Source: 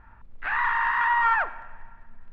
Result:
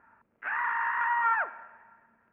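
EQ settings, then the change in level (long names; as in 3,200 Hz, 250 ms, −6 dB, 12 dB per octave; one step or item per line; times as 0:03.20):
high-frequency loss of the air 160 metres
loudspeaker in its box 310–2,300 Hz, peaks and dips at 330 Hz −3 dB, 500 Hz −3 dB, 780 Hz −6 dB, 1,100 Hz −5 dB, 1,900 Hz −4 dB
0.0 dB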